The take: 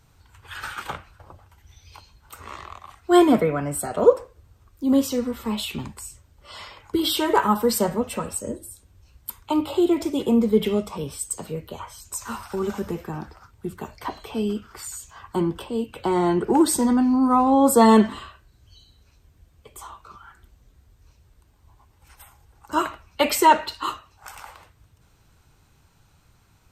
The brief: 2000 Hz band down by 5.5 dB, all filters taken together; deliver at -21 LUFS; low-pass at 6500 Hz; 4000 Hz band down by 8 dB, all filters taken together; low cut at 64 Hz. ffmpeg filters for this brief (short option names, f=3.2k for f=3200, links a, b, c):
-af "highpass=64,lowpass=6.5k,equalizer=f=2k:t=o:g=-5.5,equalizer=f=4k:t=o:g=-8,volume=1.5dB"